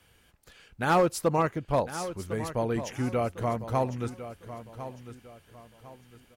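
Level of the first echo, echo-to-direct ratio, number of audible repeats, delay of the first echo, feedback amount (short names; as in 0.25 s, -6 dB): -12.5 dB, -12.0 dB, 3, 1.053 s, 33%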